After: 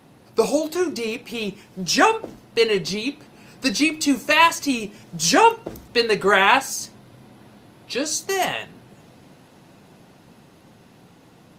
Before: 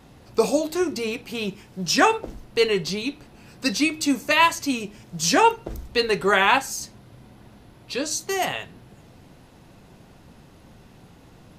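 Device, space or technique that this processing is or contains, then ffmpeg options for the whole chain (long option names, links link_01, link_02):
video call: -af "highpass=130,dynaudnorm=framelen=500:gausssize=11:maxgain=5dB,volume=1dB" -ar 48000 -c:a libopus -b:a 32k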